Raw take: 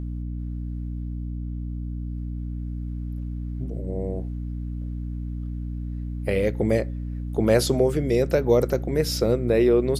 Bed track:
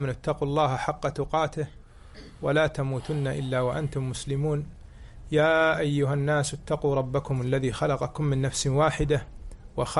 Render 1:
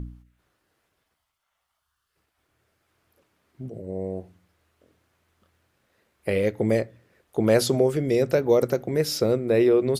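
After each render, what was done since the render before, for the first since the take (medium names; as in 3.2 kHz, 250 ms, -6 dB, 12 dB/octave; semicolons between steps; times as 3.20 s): de-hum 60 Hz, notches 5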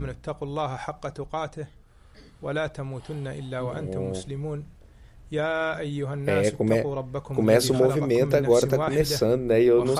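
add bed track -5 dB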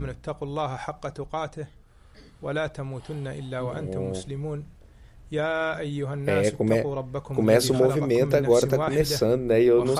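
no audible change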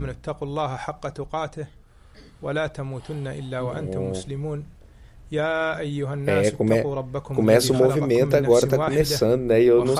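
trim +2.5 dB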